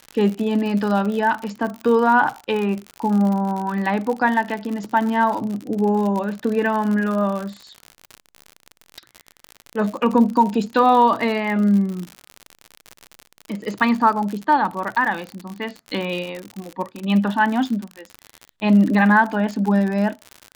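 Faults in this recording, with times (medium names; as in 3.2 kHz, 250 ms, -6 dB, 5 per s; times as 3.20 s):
crackle 65 per s -25 dBFS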